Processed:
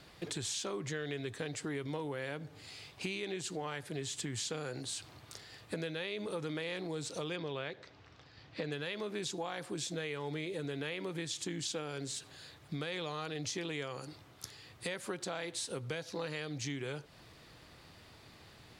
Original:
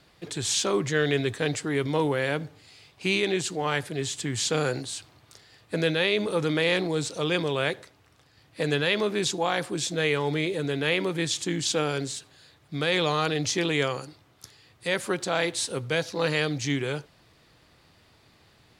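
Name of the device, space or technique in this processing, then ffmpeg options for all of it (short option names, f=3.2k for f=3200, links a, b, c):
serial compression, peaks first: -filter_complex "[0:a]acompressor=threshold=-36dB:ratio=4,acompressor=threshold=-43dB:ratio=1.5,asettb=1/sr,asplit=3[a][b][c];[a]atrim=end=7.364[d];[b]atrim=start=7.36:end=8.72,asetpts=PTS-STARTPTS,afade=t=in:d=0.004:c=qsin,afade=t=out:st=1.356:d=0.004:c=qsin,lowpass=f=5.6k:w=0.5412,lowpass=f=5.6k:w=1.3066[e];[c]atrim=start=8.716[f];[d][e]acrossfade=d=0.004:c1=hsin:c2=qsin[g];[g][f]acrossfade=d=0.004:c1=qsin:c2=hsin,volume=2dB"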